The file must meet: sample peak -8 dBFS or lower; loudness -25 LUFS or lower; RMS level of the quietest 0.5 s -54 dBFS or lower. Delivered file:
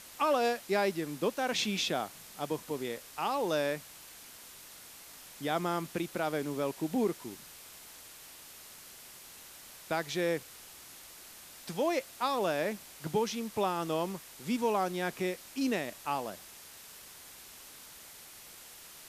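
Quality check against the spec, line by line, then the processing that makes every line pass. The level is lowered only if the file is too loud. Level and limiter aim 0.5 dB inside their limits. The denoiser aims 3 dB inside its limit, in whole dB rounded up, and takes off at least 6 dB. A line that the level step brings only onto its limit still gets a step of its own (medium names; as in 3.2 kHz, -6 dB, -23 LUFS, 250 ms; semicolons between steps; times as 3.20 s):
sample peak -16.5 dBFS: pass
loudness -33.0 LUFS: pass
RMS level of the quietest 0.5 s -51 dBFS: fail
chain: noise reduction 6 dB, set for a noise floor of -51 dBFS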